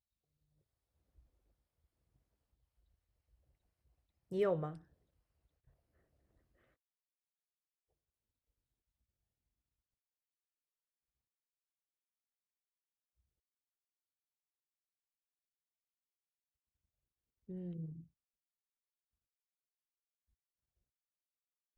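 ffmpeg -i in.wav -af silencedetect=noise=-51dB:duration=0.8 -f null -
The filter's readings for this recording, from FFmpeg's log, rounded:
silence_start: 0.00
silence_end: 4.31 | silence_duration: 4.31
silence_start: 4.78
silence_end: 17.49 | silence_duration: 12.71
silence_start: 18.02
silence_end: 21.77 | silence_duration: 3.75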